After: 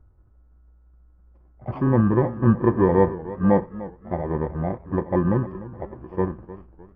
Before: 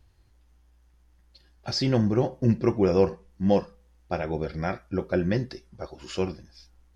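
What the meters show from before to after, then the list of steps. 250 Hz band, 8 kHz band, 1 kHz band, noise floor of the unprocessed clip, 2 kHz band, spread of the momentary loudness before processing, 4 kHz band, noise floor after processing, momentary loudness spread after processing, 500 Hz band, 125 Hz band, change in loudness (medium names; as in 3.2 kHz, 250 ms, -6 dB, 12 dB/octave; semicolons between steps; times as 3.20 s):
+4.5 dB, no reading, +6.5 dB, -60 dBFS, +1.0 dB, 16 LU, under -25 dB, -55 dBFS, 17 LU, +2.5 dB, +5.0 dB, +4.0 dB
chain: bit-reversed sample order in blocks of 32 samples; low-pass 1.3 kHz 24 dB/octave; pre-echo 65 ms -18.5 dB; modulated delay 302 ms, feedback 39%, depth 113 cents, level -16 dB; trim +5 dB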